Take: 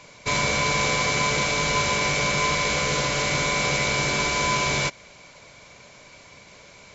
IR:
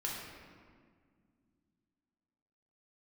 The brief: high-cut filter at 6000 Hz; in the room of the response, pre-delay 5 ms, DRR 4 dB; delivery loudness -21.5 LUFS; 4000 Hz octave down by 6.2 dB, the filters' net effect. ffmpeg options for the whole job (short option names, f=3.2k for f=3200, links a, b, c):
-filter_complex "[0:a]lowpass=6k,equalizer=f=4k:t=o:g=-7,asplit=2[a][b];[1:a]atrim=start_sample=2205,adelay=5[c];[b][c]afir=irnorm=-1:irlink=0,volume=-6.5dB[d];[a][d]amix=inputs=2:normalize=0,volume=1.5dB"